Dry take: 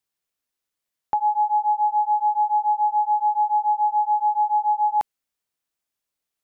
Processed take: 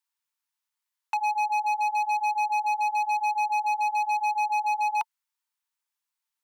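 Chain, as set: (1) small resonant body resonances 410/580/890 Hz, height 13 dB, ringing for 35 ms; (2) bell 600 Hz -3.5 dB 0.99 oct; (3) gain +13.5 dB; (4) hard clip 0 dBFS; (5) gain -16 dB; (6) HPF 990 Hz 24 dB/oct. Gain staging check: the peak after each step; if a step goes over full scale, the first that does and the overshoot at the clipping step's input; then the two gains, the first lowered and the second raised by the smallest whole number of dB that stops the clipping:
-5.0, -7.0, +6.5, 0.0, -16.0, -17.0 dBFS; step 3, 6.5 dB; step 3 +6.5 dB, step 5 -9 dB

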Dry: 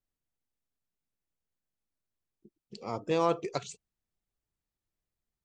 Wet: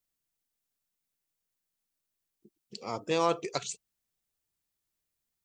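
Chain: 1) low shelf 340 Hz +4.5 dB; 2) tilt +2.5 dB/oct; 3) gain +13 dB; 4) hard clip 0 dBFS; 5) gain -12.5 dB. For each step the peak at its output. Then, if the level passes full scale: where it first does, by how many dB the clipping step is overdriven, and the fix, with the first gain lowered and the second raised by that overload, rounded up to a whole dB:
-13.0, -15.0, -2.0, -2.0, -14.5 dBFS; no overload

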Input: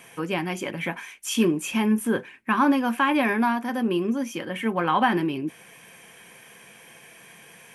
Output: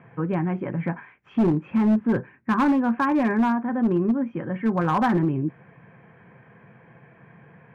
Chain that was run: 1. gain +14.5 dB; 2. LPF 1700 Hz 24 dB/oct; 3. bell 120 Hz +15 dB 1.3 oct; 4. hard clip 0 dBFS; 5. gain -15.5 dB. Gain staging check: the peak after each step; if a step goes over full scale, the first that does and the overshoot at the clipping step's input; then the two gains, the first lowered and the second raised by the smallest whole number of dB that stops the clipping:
+6.0, +5.0, +7.5, 0.0, -15.5 dBFS; step 1, 7.5 dB; step 1 +6.5 dB, step 5 -7.5 dB

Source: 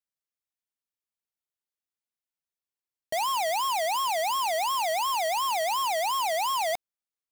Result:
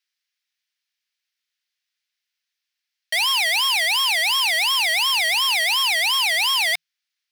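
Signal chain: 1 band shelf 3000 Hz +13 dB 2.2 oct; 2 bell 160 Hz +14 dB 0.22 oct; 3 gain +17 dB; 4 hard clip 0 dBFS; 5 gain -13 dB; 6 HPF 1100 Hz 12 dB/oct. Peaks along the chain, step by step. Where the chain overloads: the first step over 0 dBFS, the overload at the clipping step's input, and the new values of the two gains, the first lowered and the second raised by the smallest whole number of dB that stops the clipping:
-12.5, -12.5, +4.5, 0.0, -13.0, -10.5 dBFS; step 3, 4.5 dB; step 3 +12 dB, step 5 -8 dB

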